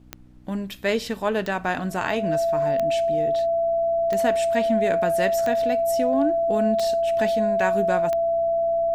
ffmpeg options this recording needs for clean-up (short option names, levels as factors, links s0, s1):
-af "adeclick=t=4,bandreject=f=61.9:t=h:w=4,bandreject=f=123.8:t=h:w=4,bandreject=f=185.7:t=h:w=4,bandreject=f=247.6:t=h:w=4,bandreject=f=309.5:t=h:w=4,bandreject=f=670:w=30,agate=range=0.0891:threshold=0.0501"